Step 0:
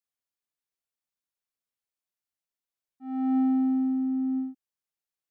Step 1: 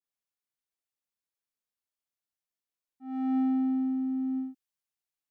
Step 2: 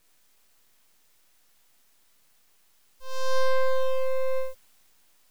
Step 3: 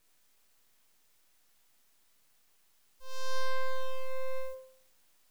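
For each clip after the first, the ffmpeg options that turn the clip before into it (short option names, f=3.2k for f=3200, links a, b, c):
-af "adynamicequalizer=threshold=0.00398:dfrequency=1800:dqfactor=0.7:tfrequency=1800:tqfactor=0.7:attack=5:release=100:ratio=0.375:range=3:mode=boostabove:tftype=highshelf,volume=-3dB"
-af "aexciter=amount=8.8:drive=5.7:freq=2k,aeval=exprs='abs(val(0))':c=same,volume=8.5dB"
-af "bandreject=f=174:t=h:w=4,bandreject=f=348:t=h:w=4,bandreject=f=522:t=h:w=4,bandreject=f=696:t=h:w=4,bandreject=f=870:t=h:w=4,bandreject=f=1.044k:t=h:w=4,bandreject=f=1.218k:t=h:w=4,bandreject=f=1.392k:t=h:w=4,bandreject=f=1.566k:t=h:w=4,bandreject=f=1.74k:t=h:w=4,bandreject=f=1.914k:t=h:w=4,bandreject=f=2.088k:t=h:w=4,bandreject=f=2.262k:t=h:w=4,bandreject=f=2.436k:t=h:w=4,bandreject=f=2.61k:t=h:w=4,bandreject=f=2.784k:t=h:w=4,bandreject=f=2.958k:t=h:w=4,bandreject=f=3.132k:t=h:w=4,bandreject=f=3.306k:t=h:w=4,bandreject=f=3.48k:t=h:w=4,bandreject=f=3.654k:t=h:w=4,bandreject=f=3.828k:t=h:w=4,bandreject=f=4.002k:t=h:w=4,bandreject=f=4.176k:t=h:w=4,bandreject=f=4.35k:t=h:w=4,bandreject=f=4.524k:t=h:w=4,bandreject=f=4.698k:t=h:w=4,bandreject=f=4.872k:t=h:w=4,bandreject=f=5.046k:t=h:w=4,bandreject=f=5.22k:t=h:w=4,bandreject=f=5.394k:t=h:w=4,bandreject=f=5.568k:t=h:w=4,bandreject=f=5.742k:t=h:w=4,bandreject=f=5.916k:t=h:w=4,volume=-5dB"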